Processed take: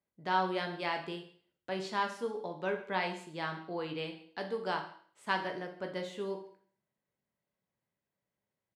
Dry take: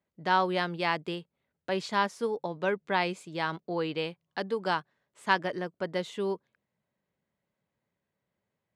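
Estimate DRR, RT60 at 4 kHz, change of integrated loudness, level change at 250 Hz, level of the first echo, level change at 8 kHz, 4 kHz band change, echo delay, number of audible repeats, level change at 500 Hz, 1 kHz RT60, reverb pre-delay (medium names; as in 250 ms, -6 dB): 3.5 dB, 0.55 s, -5.5 dB, -6.0 dB, -21.5 dB, -5.5 dB, -5.0 dB, 150 ms, 1, -5.5 dB, 0.50 s, 11 ms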